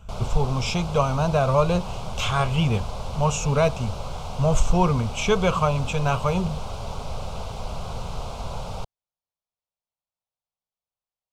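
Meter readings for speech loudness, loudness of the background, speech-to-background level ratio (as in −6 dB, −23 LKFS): −24.0 LKFS, −34.5 LKFS, 10.5 dB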